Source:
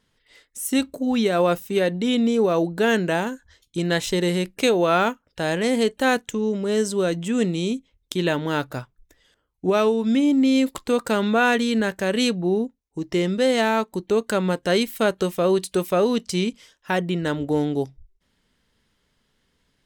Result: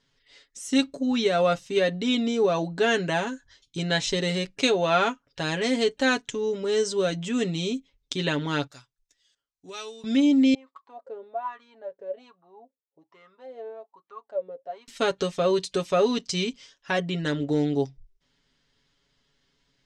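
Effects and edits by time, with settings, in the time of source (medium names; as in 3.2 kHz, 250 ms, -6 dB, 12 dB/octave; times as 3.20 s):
8.67–10.04 s: pre-emphasis filter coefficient 0.9
10.54–14.88 s: wah-wah 1.2 Hz 470–1200 Hz, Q 13
whole clip: low-pass 6.2 kHz 24 dB/octave; treble shelf 4.2 kHz +10.5 dB; comb 7.2 ms, depth 67%; trim -5 dB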